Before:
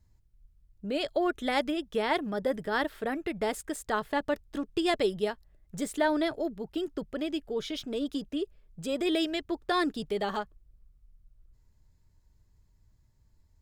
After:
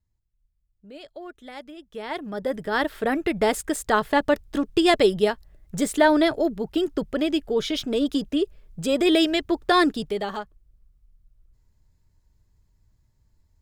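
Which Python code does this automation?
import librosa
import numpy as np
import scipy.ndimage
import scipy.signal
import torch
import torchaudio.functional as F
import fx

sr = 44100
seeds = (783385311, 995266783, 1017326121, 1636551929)

y = fx.gain(x, sr, db=fx.line((1.71, -11.5), (2.34, 1.0), (3.16, 9.0), (9.83, 9.0), (10.32, 1.0)))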